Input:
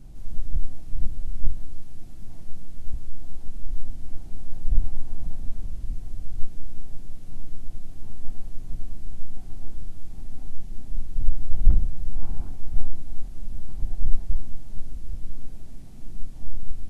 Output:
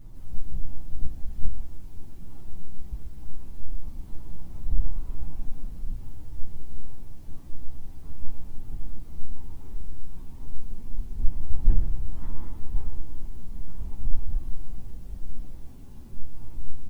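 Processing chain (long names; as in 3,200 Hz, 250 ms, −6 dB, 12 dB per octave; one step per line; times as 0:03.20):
partials spread apart or drawn together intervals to 117%
repeating echo 123 ms, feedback 53%, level −8 dB
level +3 dB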